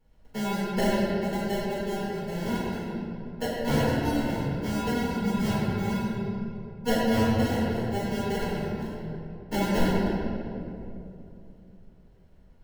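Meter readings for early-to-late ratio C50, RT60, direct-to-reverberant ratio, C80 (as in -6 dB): -3.5 dB, 2.8 s, -10.5 dB, -1.5 dB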